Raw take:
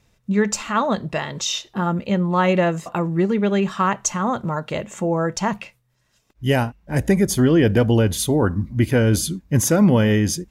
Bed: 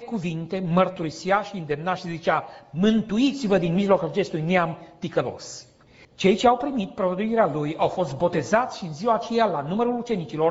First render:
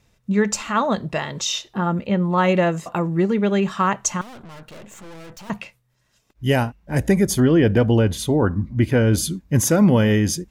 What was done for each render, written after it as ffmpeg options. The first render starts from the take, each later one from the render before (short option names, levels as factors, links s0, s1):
-filter_complex "[0:a]asettb=1/sr,asplit=3[s0][s1][s2];[s0]atrim=end=1.684[s3];[s1]atrim=start=1.68:end=2.38,asetpts=PTS-STARTPTS,afade=t=in:d=0.004:c=qsin,afade=t=out:st=0.696:d=0.004:c=qsin,acrossover=split=3900[s4][s5];[s5]acompressor=threshold=0.00112:ratio=4:attack=1:release=60[s6];[s4][s6]amix=inputs=2:normalize=0[s7];[s2]atrim=start=2.376[s8];[s3][s7]acrossfade=d=0.004:c1=hsin:c2=qsin[s9];[s9][s8]acrossfade=d=0.004:c1=qsin:c2=hsin,asettb=1/sr,asplit=3[s10][s11][s12];[s10]atrim=end=4.214[s13];[s11]atrim=start=4.21:end=5.5,asetpts=PTS-STARTPTS,afade=t=in:d=0.004:c=qsin,afade=t=out:st=1.286:d=0.004:c=qsin,aeval=exprs='(tanh(89.1*val(0)+0.65)-tanh(0.65))/89.1':c=same[s14];[s12]atrim=start=5.496[s15];[s13][s14]acrossfade=d=0.004:c1=hsin:c2=qsin[s16];[s16][s15]acrossfade=d=0.004:c1=qsin:c2=hsin,asettb=1/sr,asplit=3[s17][s18][s19];[s17]atrim=end=7.404[s20];[s18]atrim=start=7.4:end=9.18,asetpts=PTS-STARTPTS,afade=t=in:d=0.004:c=qsin,afade=t=out:st=1.776:d=0.004:c=qsin,highshelf=f=5700:g=-9.5[s21];[s19]atrim=start=9.176[s22];[s20][s21]acrossfade=d=0.004:c1=hsin:c2=qsin[s23];[s23][s22]acrossfade=d=0.004:c1=qsin:c2=hsin"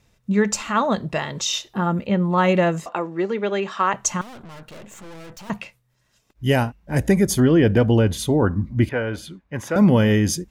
-filter_complex "[0:a]asettb=1/sr,asplit=3[s0][s1][s2];[s0]atrim=end=1.534[s3];[s1]atrim=start=1.53:end=2.05,asetpts=PTS-STARTPTS,afade=t=in:d=0.004:c=qsin,afade=t=out:st=0.516:d=0.004:c=qsin,highshelf=f=11000:g=7.5[s4];[s2]atrim=start=2.046[s5];[s3][s4]acrossfade=d=0.004:c1=hsin:c2=qsin[s6];[s6][s5]acrossfade=d=0.004:c1=qsin:c2=hsin,asettb=1/sr,asplit=3[s7][s8][s9];[s7]atrim=end=2.864[s10];[s8]atrim=start=2.86:end=3.94,asetpts=PTS-STARTPTS,afade=t=in:d=0.004:c=qsin,afade=t=out:st=1.076:d=0.004:c=qsin,acrossover=split=270 7100:gain=0.0794 1 0.126[s11][s12][s13];[s11][s12][s13]amix=inputs=3:normalize=0[s14];[s9]atrim=start=3.936[s15];[s10][s14]acrossfade=d=0.004:c1=hsin:c2=qsin[s16];[s16][s15]acrossfade=d=0.004:c1=qsin:c2=hsin,asettb=1/sr,asplit=3[s17][s18][s19];[s17]atrim=end=8.894[s20];[s18]atrim=start=8.89:end=9.76,asetpts=PTS-STARTPTS,afade=t=in:d=0.004:c=qsin,afade=t=out:st=0.866:d=0.004:c=qsin,acrossover=split=510 3100:gain=0.224 1 0.1[s21][s22][s23];[s21][s22][s23]amix=inputs=3:normalize=0[s24];[s19]atrim=start=9.756[s25];[s20][s24]acrossfade=d=0.004:c1=hsin:c2=qsin[s26];[s26][s25]acrossfade=d=0.004:c1=qsin:c2=hsin"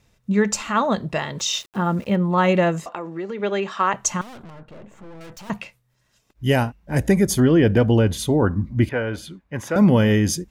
-filter_complex "[0:a]asettb=1/sr,asplit=3[s0][s1][s2];[s0]atrim=end=1.394[s3];[s1]atrim=start=1.39:end=2.16,asetpts=PTS-STARTPTS,afade=t=in:d=0.004:c=qsin,afade=t=out:st=0.766:d=0.004:c=qsin,aeval=exprs='val(0)*gte(abs(val(0)),0.0075)':c=same[s4];[s2]atrim=start=2.156[s5];[s3][s4]acrossfade=d=0.004:c1=hsin:c2=qsin[s6];[s6][s5]acrossfade=d=0.004:c1=qsin:c2=hsin,asettb=1/sr,asplit=3[s7][s8][s9];[s7]atrim=end=2.874[s10];[s8]atrim=start=2.87:end=3.4,asetpts=PTS-STARTPTS,afade=t=in:d=0.004:c=qsin,afade=t=out:st=0.526:d=0.004:c=qsin,acompressor=threshold=0.0501:ratio=4:attack=3.2:release=140:knee=1:detection=peak[s11];[s9]atrim=start=3.396[s12];[s10][s11]acrossfade=d=0.004:c1=hsin:c2=qsin[s13];[s13][s12]acrossfade=d=0.004:c1=qsin:c2=hsin,asettb=1/sr,asplit=3[s14][s15][s16];[s14]atrim=end=4.504[s17];[s15]atrim=start=4.5:end=5.21,asetpts=PTS-STARTPTS,afade=t=in:d=0.004:c=qsin,afade=t=out:st=0.706:d=0.004:c=qsin,lowpass=f=1000:p=1[s18];[s16]atrim=start=5.206[s19];[s17][s18]acrossfade=d=0.004:c1=hsin:c2=qsin[s20];[s20][s19]acrossfade=d=0.004:c1=qsin:c2=hsin"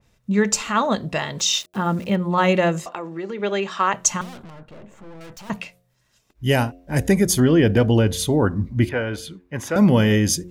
-af "bandreject=f=89.11:t=h:w=4,bandreject=f=178.22:t=h:w=4,bandreject=f=267.33:t=h:w=4,bandreject=f=356.44:t=h:w=4,bandreject=f=445.55:t=h:w=4,bandreject=f=534.66:t=h:w=4,bandreject=f=623.77:t=h:w=4,bandreject=f=712.88:t=h:w=4,adynamicequalizer=threshold=0.0126:dfrequency=2400:dqfactor=0.7:tfrequency=2400:tqfactor=0.7:attack=5:release=100:ratio=0.375:range=2:mode=boostabove:tftype=highshelf"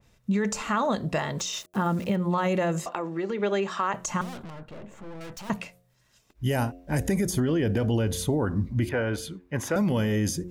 -filter_complex "[0:a]alimiter=limit=0.224:level=0:latency=1:release=16,acrossover=split=2000|5300[s0][s1][s2];[s0]acompressor=threshold=0.0794:ratio=4[s3];[s1]acompressor=threshold=0.00562:ratio=4[s4];[s2]acompressor=threshold=0.02:ratio=4[s5];[s3][s4][s5]amix=inputs=3:normalize=0"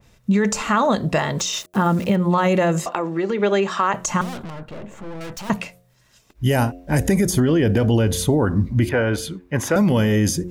-af "volume=2.37"